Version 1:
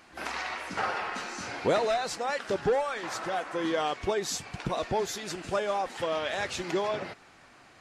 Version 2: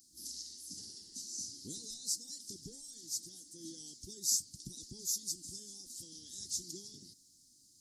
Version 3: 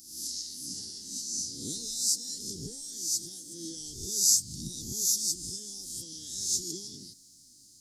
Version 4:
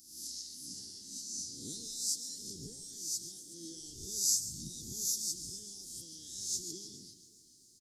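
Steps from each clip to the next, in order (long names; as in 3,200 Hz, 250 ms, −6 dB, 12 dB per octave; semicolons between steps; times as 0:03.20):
elliptic band-stop filter 290–5,100 Hz, stop band 40 dB; first-order pre-emphasis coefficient 0.9; level +6 dB
peak hold with a rise ahead of every peak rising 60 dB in 0.72 s; level +6 dB
single-tap delay 136 ms −14 dB; feedback echo with a swinging delay time 141 ms, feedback 71%, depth 213 cents, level −17.5 dB; level −7 dB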